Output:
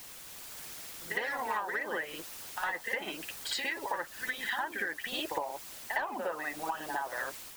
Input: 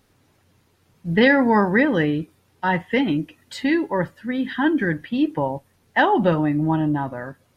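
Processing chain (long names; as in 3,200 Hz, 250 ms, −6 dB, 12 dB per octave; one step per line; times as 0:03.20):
high-pass filter 670 Hz 12 dB per octave
treble cut that deepens with the level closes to 1,600 Hz, closed at −21 dBFS
leveller curve on the samples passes 1
in parallel at −4 dB: bit-depth reduction 6 bits, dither triangular
on the sum: automatic gain control gain up to 3.5 dB
harmonic and percussive parts rebalanced harmonic −17 dB
downward compressor 12 to 1, threshold −27 dBFS, peak gain reduction 17.5 dB
on a send: backwards echo 59 ms −4.5 dB
on the sum: level −4.5 dB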